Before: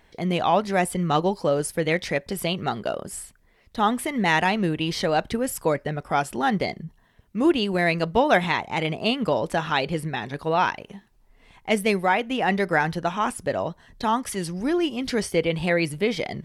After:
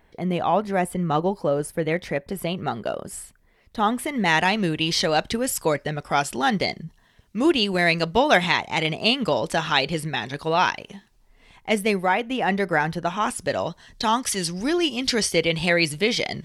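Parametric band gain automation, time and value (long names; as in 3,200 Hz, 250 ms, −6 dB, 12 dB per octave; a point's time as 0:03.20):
parametric band 5,300 Hz 2.3 octaves
0:02.40 −8 dB
0:02.95 −1 dB
0:04.01 −1 dB
0:04.68 +8.5 dB
0:10.94 +8.5 dB
0:11.95 −0.5 dB
0:13.01 −0.5 dB
0:13.55 +11 dB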